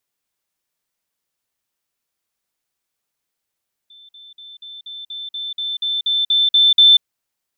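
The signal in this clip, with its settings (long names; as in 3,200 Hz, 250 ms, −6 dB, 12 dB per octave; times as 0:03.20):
level staircase 3,540 Hz −42 dBFS, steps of 3 dB, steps 13, 0.19 s 0.05 s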